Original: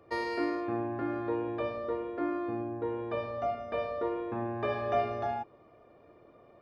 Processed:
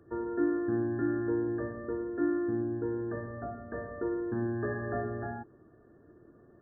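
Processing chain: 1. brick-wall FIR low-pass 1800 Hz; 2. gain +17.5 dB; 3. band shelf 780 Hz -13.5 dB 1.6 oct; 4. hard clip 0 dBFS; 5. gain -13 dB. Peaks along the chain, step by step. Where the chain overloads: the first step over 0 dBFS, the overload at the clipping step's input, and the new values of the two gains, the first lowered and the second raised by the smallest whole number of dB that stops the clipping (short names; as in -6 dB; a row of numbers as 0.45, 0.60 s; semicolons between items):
-18.0, -0.5, -5.5, -5.5, -18.5 dBFS; no overload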